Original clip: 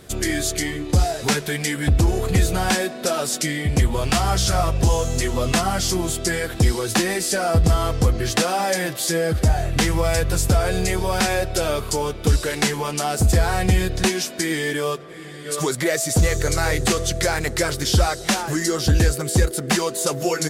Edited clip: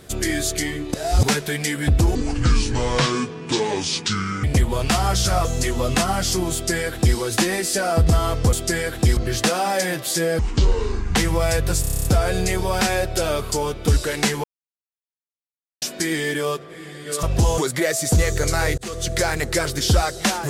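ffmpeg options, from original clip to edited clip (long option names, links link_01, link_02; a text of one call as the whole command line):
ffmpeg -i in.wav -filter_complex "[0:a]asplit=23[link_01][link_02][link_03][link_04][link_05][link_06][link_07][link_08][link_09][link_10][link_11][link_12][link_13][link_14][link_15][link_16][link_17][link_18][link_19][link_20][link_21][link_22][link_23];[link_01]atrim=end=0.942[link_24];[link_02]atrim=start=0.938:end=1.232,asetpts=PTS-STARTPTS,areverse[link_25];[link_03]atrim=start=1.228:end=2.154[link_26];[link_04]atrim=start=2.15:end=3.66,asetpts=PTS-STARTPTS,asetrate=29106,aresample=44100,atrim=end_sample=100895,asetpts=PTS-STARTPTS[link_27];[link_05]atrim=start=3.656:end=4.672[link_28];[link_06]atrim=start=5.018:end=8.102[link_29];[link_07]atrim=start=6.098:end=6.742[link_30];[link_08]atrim=start=8.098:end=9.324[link_31];[link_09]atrim=start=9.32:end=9.79,asetpts=PTS-STARTPTS,asetrate=26901,aresample=44100[link_32];[link_10]atrim=start=9.786:end=10.472[link_33];[link_11]atrim=start=10.438:end=10.472[link_34];[link_12]atrim=start=10.438:end=10.472[link_35];[link_13]atrim=start=10.438:end=10.472[link_36];[link_14]atrim=start=10.438:end=10.472[link_37];[link_15]atrim=start=10.438:end=10.472[link_38];[link_16]atrim=start=10.438:end=10.472[link_39];[link_17]atrim=start=10.438:end=10.472[link_40];[link_18]atrim=start=10.438:end=12.83,asetpts=PTS-STARTPTS,afade=type=out:start_time=2.388:duration=0.004:curve=hsin[link_41];[link_19]atrim=start=12.83:end=14.21,asetpts=PTS-STARTPTS,volume=0[link_42];[link_20]atrim=start=14.21:end=15.622,asetpts=PTS-STARTPTS,afade=type=in:duration=0.004:curve=hsin[link_43];[link_21]atrim=start=4.668:end=5.022[link_44];[link_22]atrim=start=15.618:end=16.82,asetpts=PTS-STARTPTS,afade=type=out:start_time=1.198:duration=0.004:curve=hsin[link_45];[link_23]atrim=start=16.82,asetpts=PTS-STARTPTS,afade=type=in:duration=0.34[link_46];[link_24][link_25]acrossfade=duration=0.004:curve1=hsin:curve2=hsin[link_47];[link_47][link_26]acrossfade=duration=0.004:curve1=hsin:curve2=hsin[link_48];[link_48][link_27]acrossfade=duration=0.004:curve1=hsin:curve2=hsin[link_49];[link_49][link_28]acrossfade=duration=0.004:curve1=hsin:curve2=hsin[link_50];[link_50][link_29]acrossfade=duration=0.004:curve1=hsin:curve2=hsin[link_51];[link_51][link_30]acrossfade=duration=0.004:curve1=hsin:curve2=hsin[link_52];[link_52][link_31]acrossfade=duration=0.004:curve1=hsin:curve2=hsin[link_53];[link_53][link_32]acrossfade=duration=0.004:curve1=hsin:curve2=hsin[link_54];[link_54][link_33]acrossfade=duration=0.004:curve1=hsin:curve2=hsin[link_55];[link_55][link_34]acrossfade=duration=0.004:curve1=hsin:curve2=hsin[link_56];[link_56][link_35]acrossfade=duration=0.004:curve1=hsin:curve2=hsin[link_57];[link_57][link_36]acrossfade=duration=0.004:curve1=hsin:curve2=hsin[link_58];[link_58][link_37]acrossfade=duration=0.004:curve1=hsin:curve2=hsin[link_59];[link_59][link_38]acrossfade=duration=0.004:curve1=hsin:curve2=hsin[link_60];[link_60][link_39]acrossfade=duration=0.004:curve1=hsin:curve2=hsin[link_61];[link_61][link_40]acrossfade=duration=0.004:curve1=hsin:curve2=hsin[link_62];[link_41][link_42][link_43]concat=n=3:v=0:a=1[link_63];[link_62][link_63]acrossfade=duration=0.004:curve1=hsin:curve2=hsin[link_64];[link_64][link_44]acrossfade=duration=0.004:curve1=hsin:curve2=hsin[link_65];[link_45][link_46]concat=n=2:v=0:a=1[link_66];[link_65][link_66]acrossfade=duration=0.004:curve1=hsin:curve2=hsin" out.wav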